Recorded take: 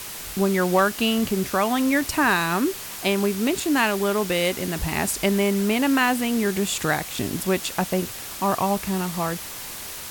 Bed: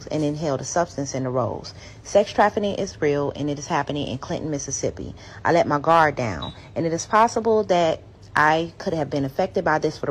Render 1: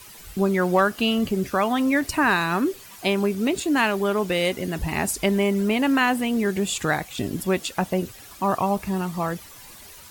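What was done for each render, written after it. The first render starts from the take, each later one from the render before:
broadband denoise 12 dB, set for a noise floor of −35 dBFS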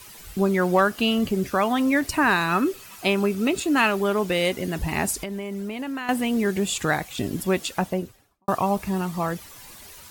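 0:02.48–0:04.01: hollow resonant body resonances 1,300/2,600 Hz, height 10 dB
0:05.15–0:06.09: downward compressor 8 to 1, threshold −27 dBFS
0:07.72–0:08.48: fade out and dull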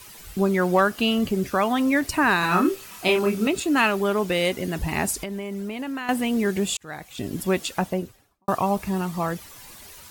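0:02.40–0:03.47: double-tracking delay 28 ms −2.5 dB
0:06.77–0:07.45: fade in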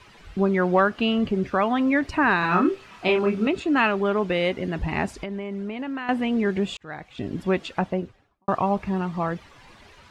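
low-pass filter 2,900 Hz 12 dB per octave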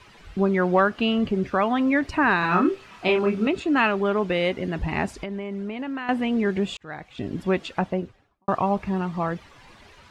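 no processing that can be heard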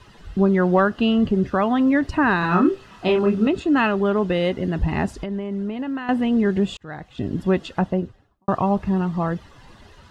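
low-shelf EQ 300 Hz +7.5 dB
notch filter 2,300 Hz, Q 5.5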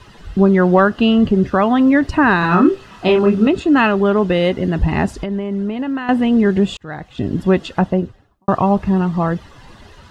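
level +5.5 dB
brickwall limiter −1 dBFS, peak gain reduction 1.5 dB

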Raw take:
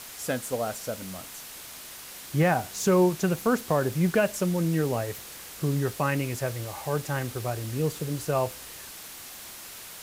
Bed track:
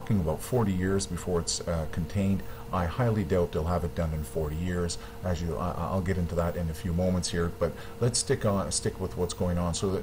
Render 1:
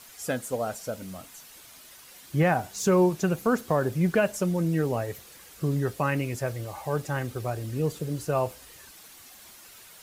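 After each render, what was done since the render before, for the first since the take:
broadband denoise 9 dB, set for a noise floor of −43 dBFS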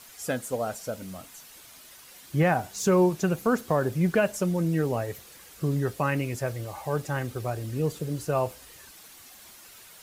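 no processing that can be heard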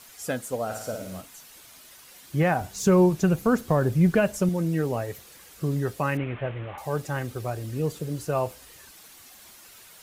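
0:00.65–0:01.21: flutter between parallel walls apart 9.2 metres, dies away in 0.7 s
0:02.61–0:04.49: low-shelf EQ 160 Hz +11 dB
0:06.17–0:06.78: linear delta modulator 16 kbit/s, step −36 dBFS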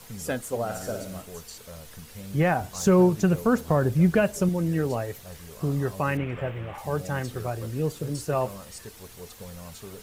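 mix in bed track −14 dB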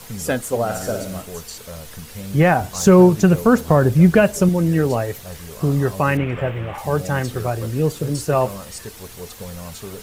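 level +8 dB

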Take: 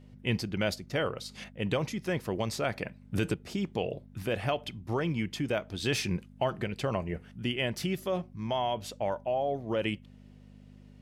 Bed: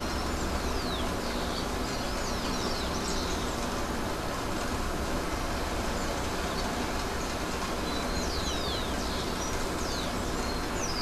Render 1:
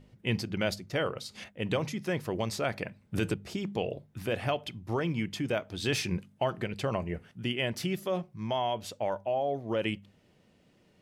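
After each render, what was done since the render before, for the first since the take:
hum removal 50 Hz, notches 5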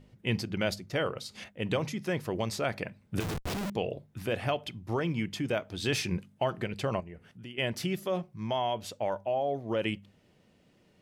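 0:03.20–0:03.70: comparator with hysteresis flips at −42.5 dBFS
0:07.00–0:07.58: downward compressor 2 to 1, threshold −50 dBFS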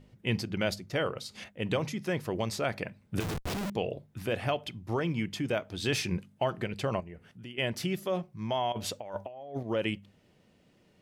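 0:08.72–0:09.63: compressor whose output falls as the input rises −36 dBFS, ratio −0.5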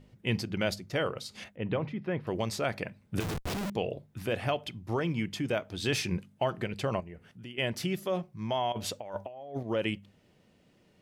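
0:01.56–0:02.27: high-frequency loss of the air 430 metres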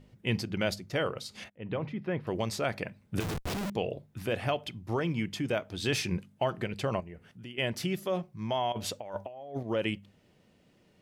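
0:01.50–0:02.02: fade in equal-power, from −18.5 dB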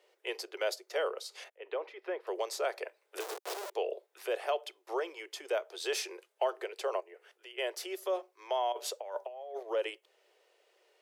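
Butterworth high-pass 380 Hz 72 dB per octave
dynamic equaliser 2,400 Hz, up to −6 dB, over −48 dBFS, Q 0.85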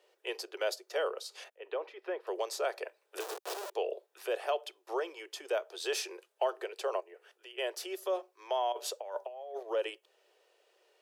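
notch filter 2,100 Hz, Q 10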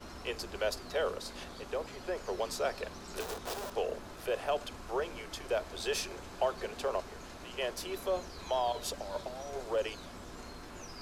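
mix in bed −15.5 dB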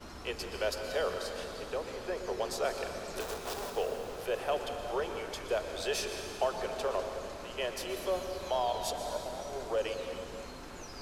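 dense smooth reverb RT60 2.5 s, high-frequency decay 0.95×, pre-delay 105 ms, DRR 5 dB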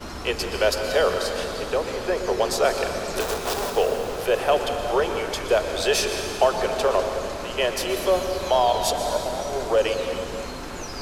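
level +12 dB

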